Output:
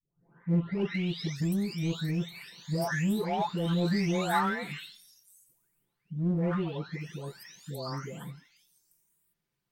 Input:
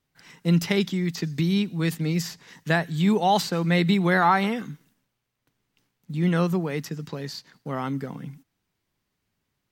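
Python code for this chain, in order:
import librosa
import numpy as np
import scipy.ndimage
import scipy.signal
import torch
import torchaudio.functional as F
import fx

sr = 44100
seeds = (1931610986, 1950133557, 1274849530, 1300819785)

p1 = fx.spec_delay(x, sr, highs='late', ms=908)
p2 = np.clip(p1, -10.0 ** (-25.5 / 20.0), 10.0 ** (-25.5 / 20.0))
p3 = p1 + (p2 * 10.0 ** (-7.0 / 20.0))
y = p3 * 10.0 ** (-7.5 / 20.0)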